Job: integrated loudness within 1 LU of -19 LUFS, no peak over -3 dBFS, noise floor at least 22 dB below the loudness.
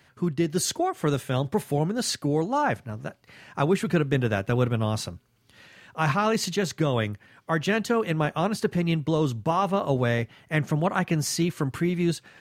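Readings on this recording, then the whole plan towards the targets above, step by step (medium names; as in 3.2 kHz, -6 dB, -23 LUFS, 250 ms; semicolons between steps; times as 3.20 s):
loudness -26.0 LUFS; peak level -9.0 dBFS; loudness target -19.0 LUFS
-> trim +7 dB; peak limiter -3 dBFS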